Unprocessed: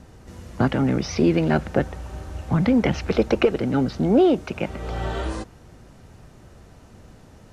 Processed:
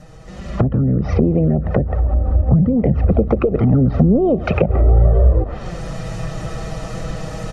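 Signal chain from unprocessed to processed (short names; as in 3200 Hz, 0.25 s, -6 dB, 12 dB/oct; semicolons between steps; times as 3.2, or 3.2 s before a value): in parallel at -5 dB: sine folder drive 4 dB, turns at -6 dBFS; on the sum: envelope flanger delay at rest 7.1 ms, full sweep at -8 dBFS; compressor 10:1, threshold -23 dBFS, peak gain reduction 15.5 dB; comb 1.6 ms, depth 48%; feedback echo 0.136 s, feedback 57%, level -19.5 dB; treble ducked by the level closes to 420 Hz, closed at -22.5 dBFS; AGC gain up to 16 dB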